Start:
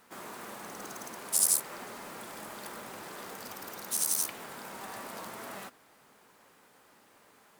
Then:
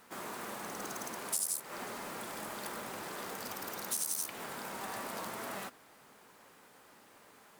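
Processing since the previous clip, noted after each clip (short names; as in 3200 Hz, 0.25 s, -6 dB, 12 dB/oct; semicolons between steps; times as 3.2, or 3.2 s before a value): compressor 6:1, threshold -33 dBFS, peak gain reduction 12 dB; gain +1.5 dB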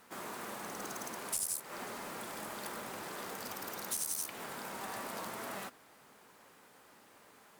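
one-sided clip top -28 dBFS; gain -1 dB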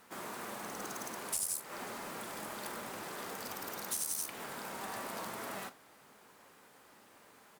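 doubler 43 ms -14 dB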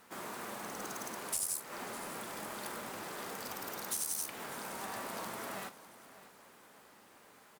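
feedback echo 0.603 s, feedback 44%, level -17 dB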